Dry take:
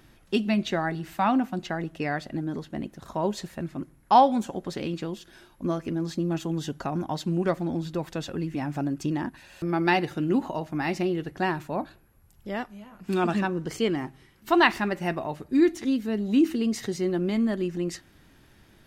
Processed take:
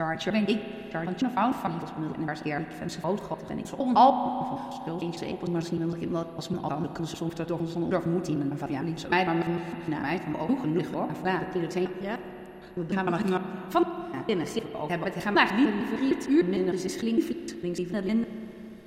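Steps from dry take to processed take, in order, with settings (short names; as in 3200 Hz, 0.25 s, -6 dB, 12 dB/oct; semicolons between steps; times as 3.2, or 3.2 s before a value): slices in reverse order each 0.152 s, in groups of 6; spring tank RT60 3.5 s, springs 32/36 ms, chirp 25 ms, DRR 8 dB; gain -1.5 dB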